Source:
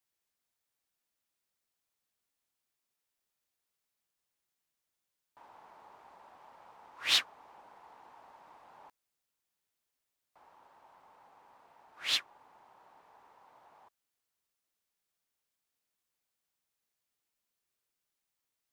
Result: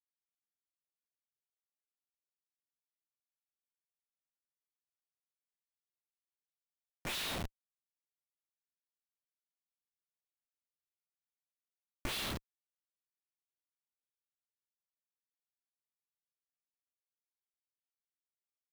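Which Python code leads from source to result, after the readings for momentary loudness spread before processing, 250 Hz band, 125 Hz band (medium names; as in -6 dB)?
12 LU, +13.5 dB, no reading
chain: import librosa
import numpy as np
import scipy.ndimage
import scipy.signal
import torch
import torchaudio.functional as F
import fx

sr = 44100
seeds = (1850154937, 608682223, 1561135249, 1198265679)

y = fx.rev_double_slope(x, sr, seeds[0], early_s=0.73, late_s=2.4, knee_db=-27, drr_db=-8.5)
y = fx.schmitt(y, sr, flips_db=-29.0)
y = fx.power_curve(y, sr, exponent=2.0)
y = F.gain(torch.from_numpy(y), 5.0).numpy()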